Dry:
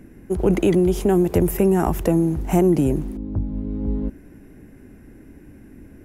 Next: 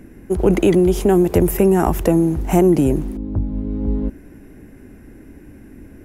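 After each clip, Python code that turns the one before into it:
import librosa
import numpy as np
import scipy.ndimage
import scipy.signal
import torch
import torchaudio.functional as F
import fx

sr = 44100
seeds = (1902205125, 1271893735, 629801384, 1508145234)

y = fx.peak_eq(x, sr, hz=150.0, db=-2.5, octaves=1.0)
y = y * librosa.db_to_amplitude(4.0)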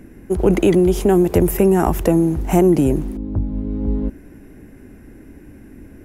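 y = x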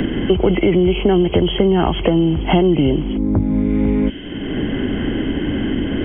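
y = fx.freq_compress(x, sr, knee_hz=2000.0, ratio=4.0)
y = fx.band_squash(y, sr, depth_pct=100)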